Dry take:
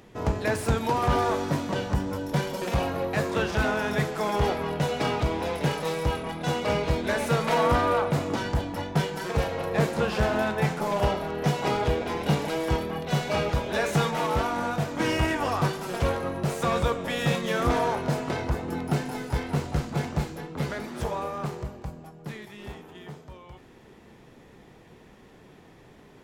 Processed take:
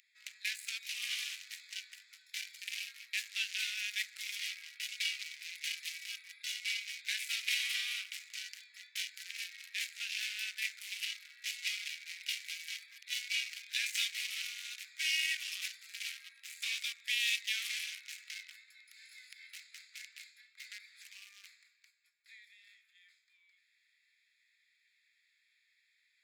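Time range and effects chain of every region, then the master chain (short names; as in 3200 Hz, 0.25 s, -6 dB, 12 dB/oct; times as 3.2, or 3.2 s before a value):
18.56–19.47 compressor 10:1, threshold -30 dBFS + brick-wall FIR high-pass 430 Hz + tilt shelf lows -3.5 dB, about 1100 Hz
whole clip: Wiener smoothing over 15 samples; steep high-pass 2200 Hz 48 dB/oct; gain +5.5 dB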